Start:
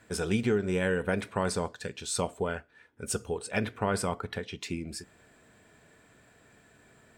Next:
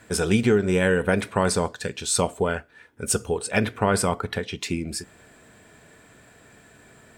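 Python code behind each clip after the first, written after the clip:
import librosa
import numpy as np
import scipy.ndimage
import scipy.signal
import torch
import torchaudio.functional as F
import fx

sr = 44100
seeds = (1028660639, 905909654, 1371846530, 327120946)

y = fx.peak_eq(x, sr, hz=11000.0, db=3.0, octaves=1.1)
y = F.gain(torch.from_numpy(y), 7.5).numpy()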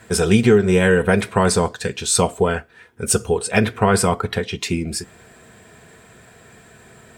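y = fx.notch_comb(x, sr, f0_hz=290.0)
y = F.gain(torch.from_numpy(y), 6.5).numpy()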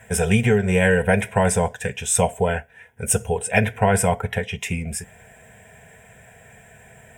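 y = fx.fixed_phaser(x, sr, hz=1200.0, stages=6)
y = F.gain(torch.from_numpy(y), 1.5).numpy()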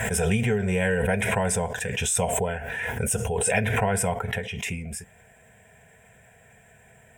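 y = fx.pre_swell(x, sr, db_per_s=21.0)
y = F.gain(torch.from_numpy(y), -7.0).numpy()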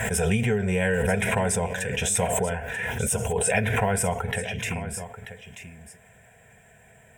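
y = x + 10.0 ** (-12.0 / 20.0) * np.pad(x, (int(937 * sr / 1000.0), 0))[:len(x)]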